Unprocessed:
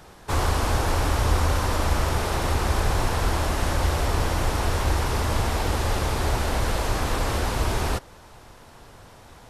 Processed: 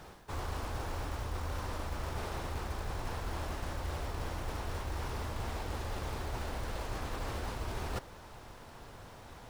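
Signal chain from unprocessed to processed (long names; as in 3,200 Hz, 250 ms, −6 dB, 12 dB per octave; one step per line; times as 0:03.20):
high-shelf EQ 7,300 Hz −7 dB
reversed playback
downward compressor 6 to 1, threshold −32 dBFS, peak gain reduction 15.5 dB
reversed playback
log-companded quantiser 6 bits
level −3 dB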